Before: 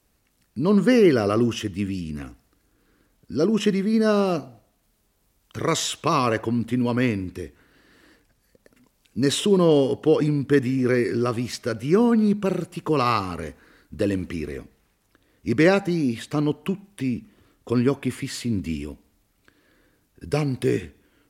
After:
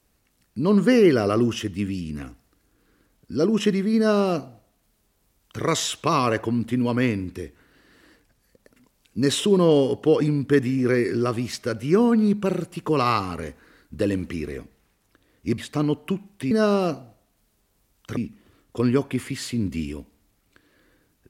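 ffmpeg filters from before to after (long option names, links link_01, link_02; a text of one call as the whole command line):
ffmpeg -i in.wav -filter_complex "[0:a]asplit=4[link_01][link_02][link_03][link_04];[link_01]atrim=end=15.582[link_05];[link_02]atrim=start=16.158:end=17.092[link_06];[link_03]atrim=start=3.968:end=5.632[link_07];[link_04]atrim=start=17.088[link_08];[link_05][link_06]acrossfade=duration=0.004:curve1=hsin:curve2=hsin[link_09];[link_09][link_07]acrossfade=duration=0.004:curve1=hsin:curve2=hsin[link_10];[link_10][link_08]acrossfade=duration=0.004:curve1=hsin:curve2=hsin" out.wav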